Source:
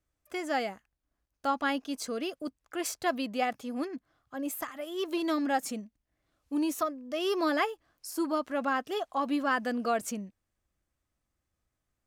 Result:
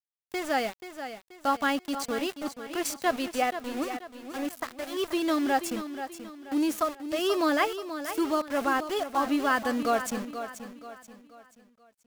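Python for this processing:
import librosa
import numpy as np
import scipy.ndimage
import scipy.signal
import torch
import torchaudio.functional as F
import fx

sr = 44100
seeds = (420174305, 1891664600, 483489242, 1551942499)

y = fx.bass_treble(x, sr, bass_db=-3, treble_db=-5, at=(3.16, 4.97))
y = np.where(np.abs(y) >= 10.0 ** (-37.5 / 20.0), y, 0.0)
y = fx.echo_feedback(y, sr, ms=482, feedback_pct=40, wet_db=-10.5)
y = y * 10.0 ** (3.0 / 20.0)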